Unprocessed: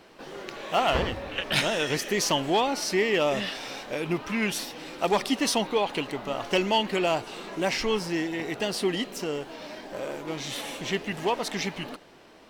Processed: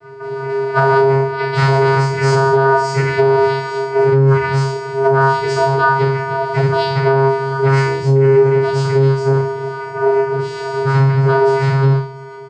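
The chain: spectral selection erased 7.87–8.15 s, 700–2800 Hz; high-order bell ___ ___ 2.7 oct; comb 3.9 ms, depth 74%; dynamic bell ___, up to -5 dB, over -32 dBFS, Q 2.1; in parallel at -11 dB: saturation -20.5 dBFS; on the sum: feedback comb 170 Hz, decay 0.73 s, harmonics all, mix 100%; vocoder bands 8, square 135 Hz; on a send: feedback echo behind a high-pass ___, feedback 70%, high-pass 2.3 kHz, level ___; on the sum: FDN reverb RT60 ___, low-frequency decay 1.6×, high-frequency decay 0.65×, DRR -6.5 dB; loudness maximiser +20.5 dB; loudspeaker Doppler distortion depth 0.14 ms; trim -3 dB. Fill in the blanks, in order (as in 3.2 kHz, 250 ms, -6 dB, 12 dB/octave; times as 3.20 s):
730 Hz, +8.5 dB, 420 Hz, 686 ms, -22 dB, 0.4 s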